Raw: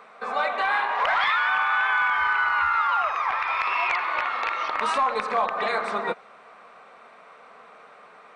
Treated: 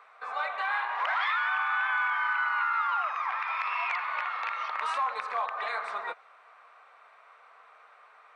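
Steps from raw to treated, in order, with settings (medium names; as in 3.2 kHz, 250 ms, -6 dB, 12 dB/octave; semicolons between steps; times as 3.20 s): high-pass 1 kHz 12 dB/octave; treble shelf 2.3 kHz -8.5 dB; trim -2 dB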